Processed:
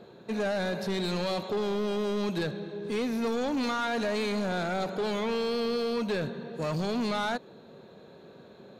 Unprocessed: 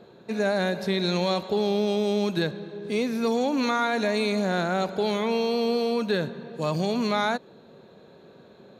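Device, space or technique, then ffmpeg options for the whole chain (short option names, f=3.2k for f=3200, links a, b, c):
saturation between pre-emphasis and de-emphasis: -af "highshelf=f=5.4k:g=10.5,asoftclip=type=tanh:threshold=-25dB,highshelf=f=5.4k:g=-10.5"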